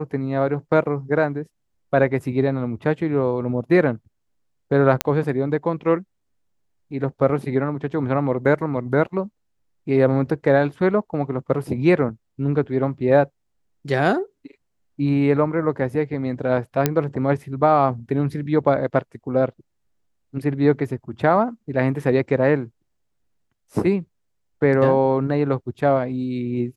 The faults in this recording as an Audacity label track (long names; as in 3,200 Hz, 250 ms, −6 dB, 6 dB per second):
5.010000	5.010000	click −2 dBFS
16.860000	16.860000	click −3 dBFS